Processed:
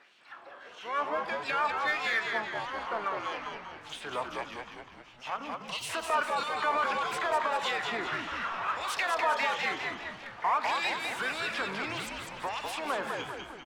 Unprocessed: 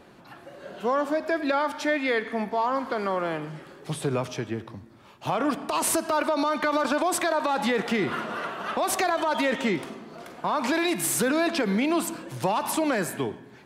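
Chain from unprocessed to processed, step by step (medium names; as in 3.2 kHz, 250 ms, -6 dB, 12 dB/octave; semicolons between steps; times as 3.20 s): time-frequency box 5.36–5.89 s, 280–2600 Hz -13 dB; LFO band-pass sine 1.6 Hz 960–3200 Hz; frequency-shifting echo 200 ms, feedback 50%, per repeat -76 Hz, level -4.5 dB; in parallel at -7 dB: saturation -37 dBFS, distortion -6 dB; on the sum: harmony voices -5 st -12 dB, +12 st -14 dB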